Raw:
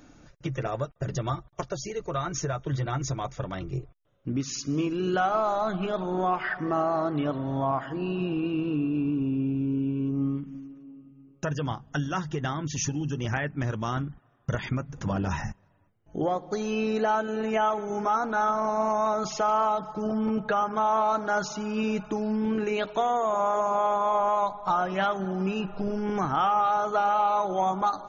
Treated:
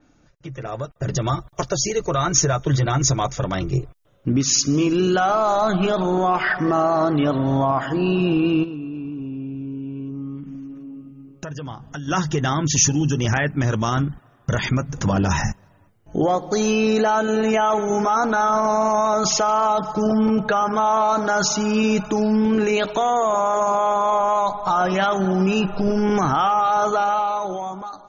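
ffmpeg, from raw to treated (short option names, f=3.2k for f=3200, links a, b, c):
-filter_complex "[0:a]asplit=3[a][b][c];[a]afade=t=out:st=8.63:d=0.02[d];[b]acompressor=threshold=-43dB:ratio=3:attack=3.2:release=140:knee=1:detection=peak,afade=t=in:st=8.63:d=0.02,afade=t=out:st=12.07:d=0.02[e];[c]afade=t=in:st=12.07:d=0.02[f];[d][e][f]amix=inputs=3:normalize=0,alimiter=limit=-22dB:level=0:latency=1:release=16,dynaudnorm=f=110:g=17:m=15dB,adynamicequalizer=threshold=0.0141:dfrequency=4300:dqfactor=0.7:tfrequency=4300:tqfactor=0.7:attack=5:release=100:ratio=0.375:range=4:mode=boostabove:tftype=highshelf,volume=-4.5dB"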